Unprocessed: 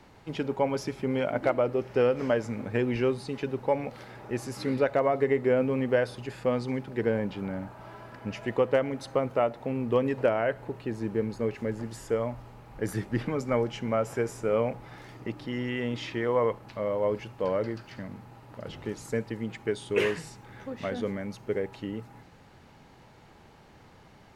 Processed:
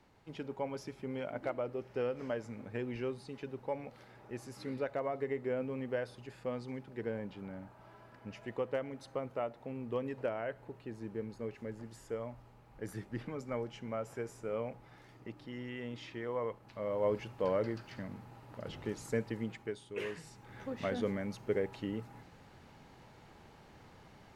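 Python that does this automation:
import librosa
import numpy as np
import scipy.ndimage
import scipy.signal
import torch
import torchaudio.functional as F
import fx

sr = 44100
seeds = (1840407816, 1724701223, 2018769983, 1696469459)

y = fx.gain(x, sr, db=fx.line((16.59, -11.5), (17.08, -4.0), (19.42, -4.0), (19.92, -15.5), (20.62, -3.0)))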